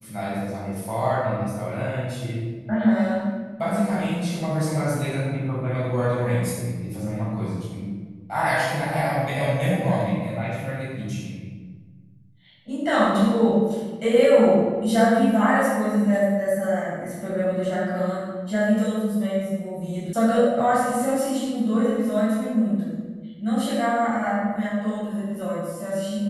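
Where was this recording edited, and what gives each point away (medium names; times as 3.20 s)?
20.13 s: sound stops dead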